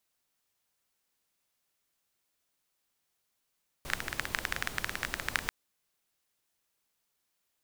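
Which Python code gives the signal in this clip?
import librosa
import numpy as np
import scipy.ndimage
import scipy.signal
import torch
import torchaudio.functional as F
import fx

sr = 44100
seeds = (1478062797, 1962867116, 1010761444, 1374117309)

y = fx.rain(sr, seeds[0], length_s=1.64, drops_per_s=16.0, hz=1700.0, bed_db=-5.5)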